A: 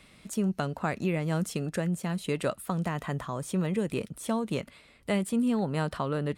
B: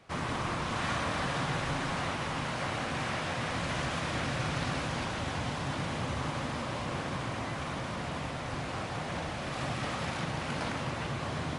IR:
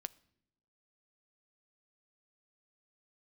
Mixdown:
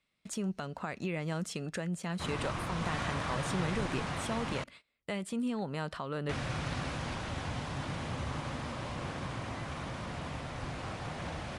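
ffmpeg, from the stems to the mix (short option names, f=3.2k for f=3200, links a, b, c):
-filter_complex "[0:a]lowpass=7.3k,tiltshelf=f=670:g=-3,alimiter=level_in=1dB:limit=-24dB:level=0:latency=1:release=269,volume=-1dB,volume=-3dB,asplit=2[a][b];[b]volume=-8.5dB[c];[1:a]lowshelf=f=69:g=9.5,adelay=2100,volume=-4.5dB,asplit=3[d][e][f];[d]atrim=end=4.64,asetpts=PTS-STARTPTS,afade=t=out:st=4.636:d=0.004:c=hsin[g];[e]atrim=start=4.64:end=6.29,asetpts=PTS-STARTPTS,volume=0[h];[f]atrim=start=6.29,asetpts=PTS-STARTPTS,afade=t=in:d=0.004:c=hsin[i];[g][h][i]concat=n=3:v=0:a=1[j];[2:a]atrim=start_sample=2205[k];[c][k]afir=irnorm=-1:irlink=0[l];[a][j][l]amix=inputs=3:normalize=0,agate=range=-24dB:threshold=-51dB:ratio=16:detection=peak"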